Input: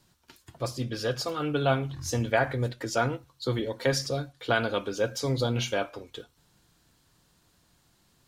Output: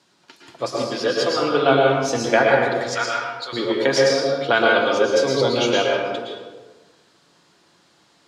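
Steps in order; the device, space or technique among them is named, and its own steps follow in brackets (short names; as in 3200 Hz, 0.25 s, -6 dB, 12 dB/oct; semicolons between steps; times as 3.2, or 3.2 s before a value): 2.65–3.53 HPF 1200 Hz 12 dB/oct; supermarket ceiling speaker (BPF 280–6200 Hz; reverb RT60 1.3 s, pre-delay 0.105 s, DRR -2 dB); gain +7.5 dB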